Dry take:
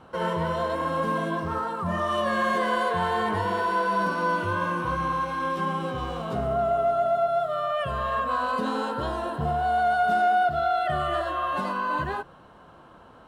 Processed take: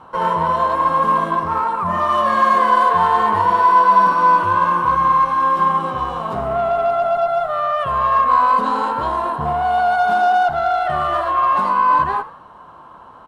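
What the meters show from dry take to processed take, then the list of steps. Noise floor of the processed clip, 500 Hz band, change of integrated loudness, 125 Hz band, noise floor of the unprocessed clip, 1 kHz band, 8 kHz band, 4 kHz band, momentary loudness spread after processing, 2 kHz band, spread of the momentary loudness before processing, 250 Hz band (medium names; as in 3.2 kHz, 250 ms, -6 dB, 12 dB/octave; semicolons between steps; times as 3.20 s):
-42 dBFS, +5.0 dB, +9.5 dB, +1.5 dB, -51 dBFS, +11.5 dB, no reading, +3.0 dB, 7 LU, +5.5 dB, 6 LU, +2.0 dB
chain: Chebyshev shaper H 6 -25 dB, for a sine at -14.5 dBFS; peaking EQ 1 kHz +13 dB 0.7 oct; frequency-shifting echo 81 ms, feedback 35%, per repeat +65 Hz, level -16.5 dB; trim +1.5 dB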